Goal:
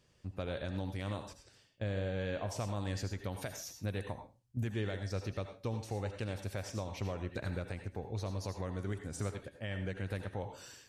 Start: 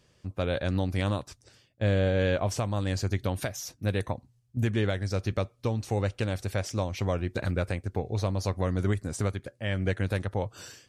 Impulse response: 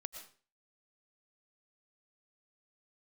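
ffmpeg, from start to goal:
-filter_complex "[0:a]alimiter=limit=-21.5dB:level=0:latency=1:release=388[link_01];[1:a]atrim=start_sample=2205,asetrate=61740,aresample=44100[link_02];[link_01][link_02]afir=irnorm=-1:irlink=0,volume=1dB"

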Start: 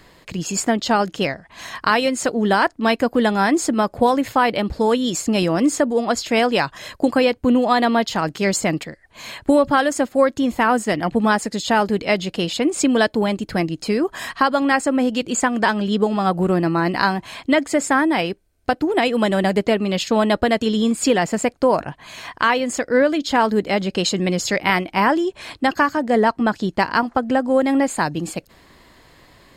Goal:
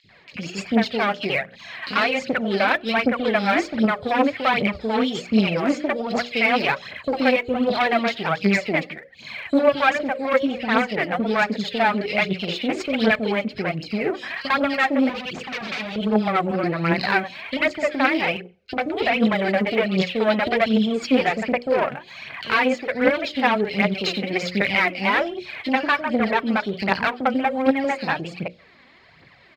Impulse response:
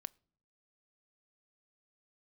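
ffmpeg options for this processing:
-filter_complex "[0:a]acrossover=split=440|3100[link_01][link_02][link_03];[link_01]adelay=40[link_04];[link_02]adelay=90[link_05];[link_04][link_05][link_03]amix=inputs=3:normalize=0,asettb=1/sr,asplit=3[link_06][link_07][link_08];[link_06]atrim=end=15.094[link_09];[link_07]atrim=start=15.09:end=15.96,asetpts=PTS-STARTPTS,afade=type=in:duration=0.004:curve=qsin,afade=type=out:start_time=0.866:duration=0.004:curve=qsin,aeval=exprs='0.0708*(abs(mod(val(0)/0.0708+3,4)-2)-1)':channel_layout=same[link_10];[link_08]atrim=start=15.956[link_11];[link_09][link_10]acrossfade=duration=0.004:curve1=hsin:curve2=qsin[link_12];[link_12][link_11]acrossfade=duration=0.004:curve1=qsin:curve2=hsin,aeval=exprs='(tanh(5.62*val(0)+0.75)-tanh(0.75))/5.62':channel_layout=same,highpass=120,equalizer=frequency=310:width_type=q:width=4:gain=-6,equalizer=frequency=990:width_type=q:width=4:gain=-6,equalizer=frequency=2300:width_type=q:width=4:gain=8,lowpass=frequency=4500:width=0.5412,lowpass=frequency=4500:width=1.3066,bandreject=frequency=60:width_type=h:width=6,bandreject=frequency=120:width_type=h:width=6,bandreject=frequency=180:width_type=h:width=6,bandreject=frequency=240:width_type=h:width=6,bandreject=frequency=300:width_type=h:width=6,bandreject=frequency=360:width_type=h:width=6,bandreject=frequency=420:width_type=h:width=6,bandreject=frequency=480:width_type=h:width=6,bandreject=frequency=540:width_type=h:width=6,bandreject=frequency=600:width_type=h:width=6,asplit=2[link_13][link_14];[1:a]atrim=start_sample=2205,afade=type=out:start_time=0.26:duration=0.01,atrim=end_sample=11907,asetrate=31311,aresample=44100[link_15];[link_14][link_15]afir=irnorm=-1:irlink=0,volume=6dB[link_16];[link_13][link_16]amix=inputs=2:normalize=0,aphaser=in_gain=1:out_gain=1:delay=4.1:decay=0.56:speed=1.3:type=triangular,volume=-5dB"

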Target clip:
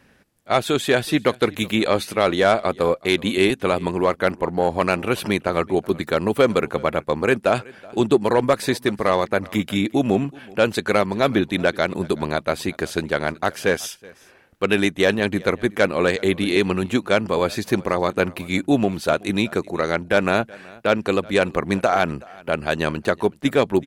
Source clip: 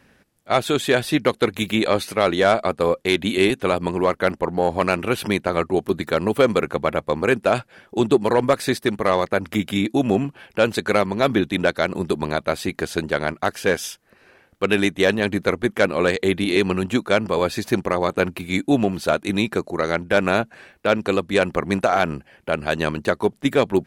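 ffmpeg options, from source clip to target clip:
ffmpeg -i in.wav -af "aecho=1:1:375:0.0668" out.wav

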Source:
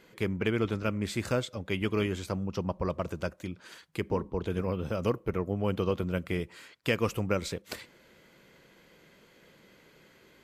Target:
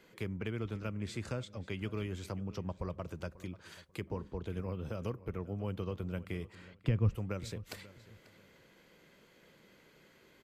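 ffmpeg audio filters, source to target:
ffmpeg -i in.wav -filter_complex "[0:a]asettb=1/sr,asplit=3[link_01][link_02][link_03];[link_01]atrim=end=0.934[link_04];[link_02]atrim=start=0.93:end=1.77,asetpts=PTS-STARTPTS,afade=type=in:duration=0.004:curve=qsin,afade=type=out:start_time=0.836:duration=0.004:curve=qsin,lowpass=9700[link_05];[link_03]atrim=start=1.766[link_06];[link_04][link_05]acrossfade=duration=0.004:curve1=hsin:curve2=qsin[link_07];[link_07][link_06]acrossfade=duration=0.004:curve1=qsin:curve2=hsin,asettb=1/sr,asplit=3[link_08][link_09][link_10];[link_08]atrim=end=6.554[link_11];[link_09]atrim=start=6.55:end=7.15,asetpts=PTS-STARTPTS,afade=type=in:duration=0.004:curve=qsin,afade=type=out:start_time=0.596:duration=0.004:curve=qsin,aemphasis=mode=reproduction:type=riaa[link_12];[link_10]atrim=start=7.146[link_13];[link_11][link_12]acrossfade=duration=0.004:curve1=hsin:curve2=qsin[link_14];[link_14][link_13]acrossfade=duration=0.004:curve1=qsin:curve2=hsin,acrossover=split=150[link_15][link_16];[link_16]acompressor=threshold=-39dB:ratio=2[link_17];[link_15][link_17]amix=inputs=2:normalize=0,asplit=2[link_18][link_19];[link_19]adelay=540,lowpass=frequency=5000:poles=1,volume=-18dB,asplit=2[link_20][link_21];[link_21]adelay=540,lowpass=frequency=5000:poles=1,volume=0.24[link_22];[link_18][link_20][link_22]amix=inputs=3:normalize=0,volume=-4dB" out.wav

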